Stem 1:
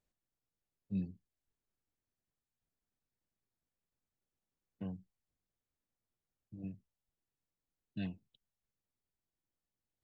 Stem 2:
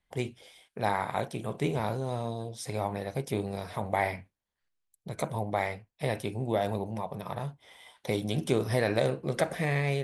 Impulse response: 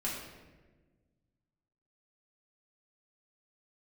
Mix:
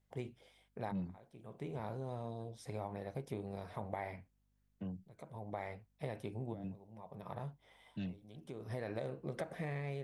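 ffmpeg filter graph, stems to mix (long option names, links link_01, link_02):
-filter_complex "[0:a]acrossover=split=270|3000[link_01][link_02][link_03];[link_02]acompressor=threshold=-49dB:ratio=2.5[link_04];[link_01][link_04][link_03]amix=inputs=3:normalize=0,asoftclip=type=tanh:threshold=-34dB,volume=0.5dB,asplit=2[link_05][link_06];[1:a]highshelf=frequency=2600:gain=-10,acompressor=threshold=-29dB:ratio=6,aeval=exprs='val(0)+0.000355*(sin(2*PI*50*n/s)+sin(2*PI*2*50*n/s)/2+sin(2*PI*3*50*n/s)/3+sin(2*PI*4*50*n/s)/4+sin(2*PI*5*50*n/s)/5)':channel_layout=same,volume=-7.5dB[link_07];[link_06]apad=whole_len=442763[link_08];[link_07][link_08]sidechaincompress=threshold=-60dB:ratio=12:attack=43:release=486[link_09];[link_05][link_09]amix=inputs=2:normalize=0"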